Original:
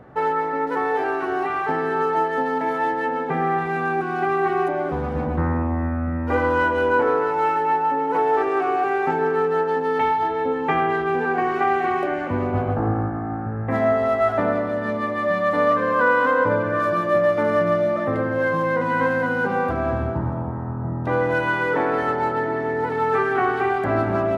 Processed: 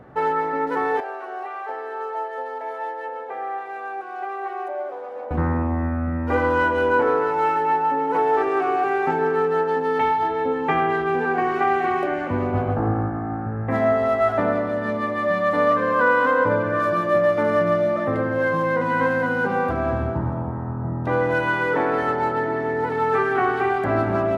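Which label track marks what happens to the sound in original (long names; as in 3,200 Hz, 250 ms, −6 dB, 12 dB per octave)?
1.000000	5.310000	four-pole ladder high-pass 480 Hz, resonance 55%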